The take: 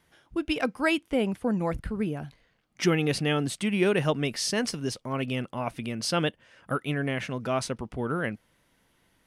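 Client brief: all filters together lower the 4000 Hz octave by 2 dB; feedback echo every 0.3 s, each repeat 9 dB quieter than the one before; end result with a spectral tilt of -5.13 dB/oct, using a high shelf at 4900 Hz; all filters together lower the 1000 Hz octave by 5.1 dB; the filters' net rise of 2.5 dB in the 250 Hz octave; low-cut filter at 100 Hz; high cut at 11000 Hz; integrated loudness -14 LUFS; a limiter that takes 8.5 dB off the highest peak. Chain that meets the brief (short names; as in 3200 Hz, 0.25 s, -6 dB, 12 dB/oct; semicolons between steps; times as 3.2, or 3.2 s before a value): HPF 100 Hz; LPF 11000 Hz; bell 250 Hz +4 dB; bell 1000 Hz -7.5 dB; bell 4000 Hz -4 dB; high shelf 4900 Hz +3 dB; limiter -19 dBFS; feedback echo 0.3 s, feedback 35%, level -9 dB; gain +15.5 dB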